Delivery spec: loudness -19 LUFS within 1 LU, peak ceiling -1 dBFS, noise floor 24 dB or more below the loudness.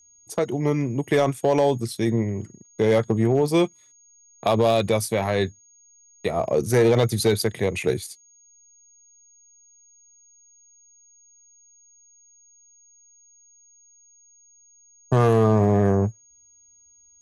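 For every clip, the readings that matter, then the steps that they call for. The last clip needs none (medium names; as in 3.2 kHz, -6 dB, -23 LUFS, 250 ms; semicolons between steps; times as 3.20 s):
clipped samples 0.5%; clipping level -11.5 dBFS; steady tone 6.6 kHz; tone level -53 dBFS; loudness -22.0 LUFS; peak level -11.5 dBFS; loudness target -19.0 LUFS
-> clip repair -11.5 dBFS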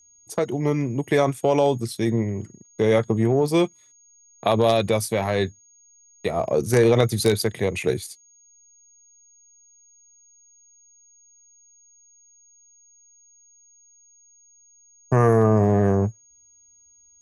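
clipped samples 0.0%; steady tone 6.6 kHz; tone level -53 dBFS
-> band-stop 6.6 kHz, Q 30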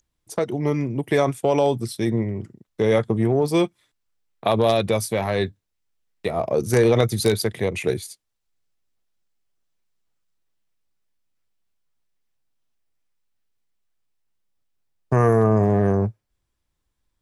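steady tone not found; loudness -21.5 LUFS; peak level -2.5 dBFS; loudness target -19.0 LUFS
-> trim +2.5 dB; peak limiter -1 dBFS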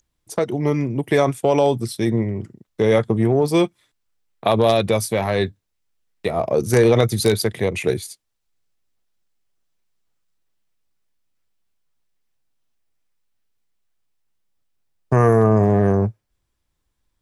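loudness -19.0 LUFS; peak level -1.0 dBFS; noise floor -74 dBFS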